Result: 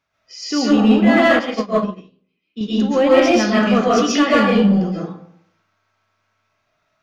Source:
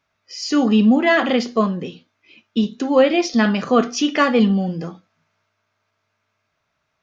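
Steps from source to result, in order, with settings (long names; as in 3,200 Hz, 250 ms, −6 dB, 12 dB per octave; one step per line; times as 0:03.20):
convolution reverb RT60 0.70 s, pre-delay 95 ms, DRR −6.5 dB
in parallel at −4 dB: hard clipping −8.5 dBFS, distortion −10 dB
0:01.39–0:02.61: on the sum: expander for the loud parts 2.5 to 1, over −22 dBFS
level −7.5 dB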